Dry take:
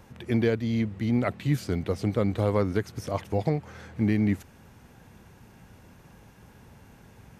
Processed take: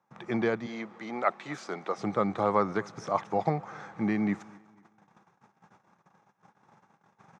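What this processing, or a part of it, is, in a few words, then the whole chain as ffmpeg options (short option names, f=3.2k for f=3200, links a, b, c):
television speaker: -filter_complex "[0:a]agate=range=-23dB:threshold=-49dB:ratio=16:detection=peak,asettb=1/sr,asplit=3[a][b][c];[a]atrim=end=0.664[d];[b]atrim=start=0.66:end=1.98,asetpts=PTS-STARTPTS,afade=t=in:d=0.004:c=qsin,afade=t=out:st=1.316:d=0.004:c=qsin,highpass=360[e];[c]atrim=start=1.976[f];[d][e]acrossfade=d=0.004:c1=hsin:c2=qsin[g];[g][f]acrossfade=d=0.004:c1=qsin:c2=hsin,highpass=f=160:w=0.5412,highpass=f=160:w=1.3066,equalizer=f=260:t=q:w=4:g=-10,equalizer=f=460:t=q:w=4:g=-4,equalizer=f=820:t=q:w=4:g=8,equalizer=f=1.2k:t=q:w=4:g=10,equalizer=f=2.9k:t=q:w=4:g=-8,equalizer=f=4.5k:t=q:w=4:g=-7,lowpass=f=6.5k:w=0.5412,lowpass=f=6.5k:w=1.3066,asplit=2[h][i];[i]adelay=244,lowpass=f=5k:p=1,volume=-24dB,asplit=2[j][k];[k]adelay=244,lowpass=f=5k:p=1,volume=0.4,asplit=2[l][m];[m]adelay=244,lowpass=f=5k:p=1,volume=0.4[n];[h][j][l][n]amix=inputs=4:normalize=0"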